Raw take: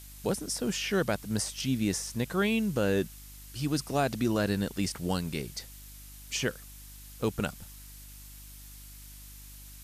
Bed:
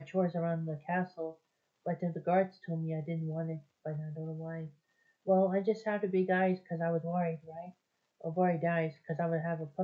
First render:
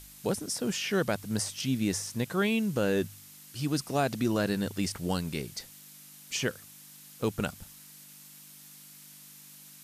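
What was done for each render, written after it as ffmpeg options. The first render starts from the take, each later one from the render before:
-af "bandreject=f=50:t=h:w=4,bandreject=f=100:t=h:w=4"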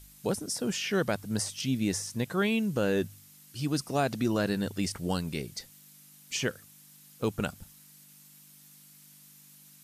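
-af "afftdn=nr=6:nf=-52"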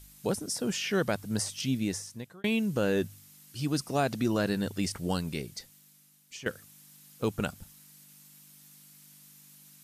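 -filter_complex "[0:a]asplit=3[a][b][c];[a]atrim=end=2.44,asetpts=PTS-STARTPTS,afade=t=out:st=1.71:d=0.73[d];[b]atrim=start=2.44:end=6.46,asetpts=PTS-STARTPTS,afade=t=in:d=0.004:c=hsin,afade=t=out:st=2.83:d=1.19:silence=0.199526[e];[c]atrim=start=6.46,asetpts=PTS-STARTPTS,afade=t=in:d=0.004:c=hsin:silence=0.199526[f];[d][e][f]concat=n=3:v=0:a=1"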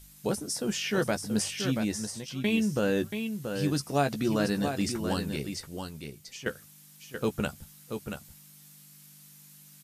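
-filter_complex "[0:a]asplit=2[a][b];[b]adelay=14,volume=-8.5dB[c];[a][c]amix=inputs=2:normalize=0,asplit=2[d][e];[e]aecho=0:1:681:0.447[f];[d][f]amix=inputs=2:normalize=0"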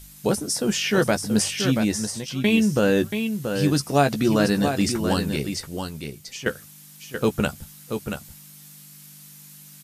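-af "volume=7.5dB"

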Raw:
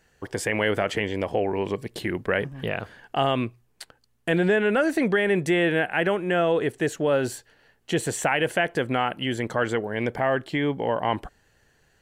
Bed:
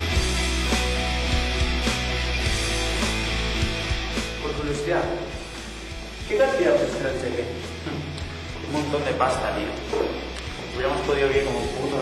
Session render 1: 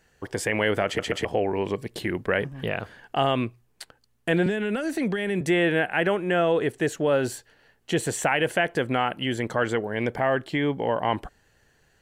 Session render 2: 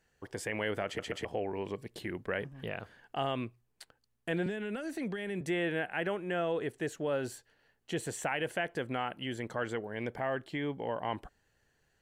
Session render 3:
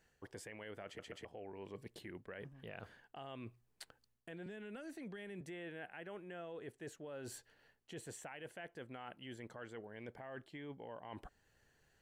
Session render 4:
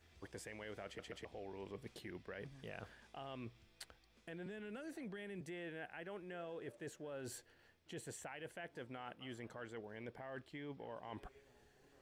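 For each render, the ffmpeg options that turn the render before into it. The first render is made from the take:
-filter_complex "[0:a]asettb=1/sr,asplit=3[a][b][c];[a]atrim=end=4.464[d];[b]atrim=start=4.46:end=5.41,asetpts=PTS-STARTPTS,afade=t=in:d=0.004:c=qsin,afade=t=out:st=0.946:d=0.004:c=qsin,acrossover=split=270|3000[e][f][g];[f]acompressor=threshold=-28dB:ratio=6:attack=3.2:release=140:knee=2.83:detection=peak[h];[e][h][g]amix=inputs=3:normalize=0[i];[c]atrim=start=5.406[j];[d][i]acrossfade=d=0.004:c1=hsin:c2=qsin[k];[k][j]acrossfade=d=0.004:c1=qsin:c2=hsin,asplit=4[l][m][n][o];[l]atrim=end=0.992[p];[m]atrim=start=0.858:end=0.992[q];[n]atrim=start=0.858:end=0.992[r];[o]atrim=start=1.248[s];[p][q]acrossfade=d=0.004:c1=hsin:c2=hsin[t];[t][r]acrossfade=d=0.004:c1=hsin:c2=hsin[u];[u][s]acrossfade=d=0.004:c1=hsin:c2=hsin"
-af "volume=-10.5dB"
-af "alimiter=level_in=3.5dB:limit=-24dB:level=0:latency=1:release=475,volume=-3.5dB,areverse,acompressor=threshold=-47dB:ratio=5,areverse"
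-filter_complex "[1:a]volume=-44.5dB[a];[0:a][a]amix=inputs=2:normalize=0"

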